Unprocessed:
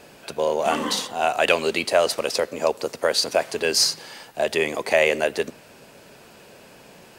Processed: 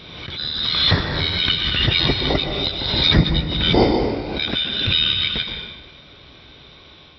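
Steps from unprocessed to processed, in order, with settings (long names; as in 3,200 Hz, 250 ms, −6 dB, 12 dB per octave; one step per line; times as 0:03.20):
band-splitting scrambler in four parts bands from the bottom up 4321
high-pass filter 68 Hz 12 dB per octave
spectral tilt −3.5 dB per octave
automatic gain control gain up to 8 dB
formants moved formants −5 semitones
linear-phase brick-wall low-pass 5,800 Hz
on a send at −3 dB: convolution reverb RT60 1.2 s, pre-delay 114 ms
on the sum: background raised ahead of every attack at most 37 dB per second
level −1 dB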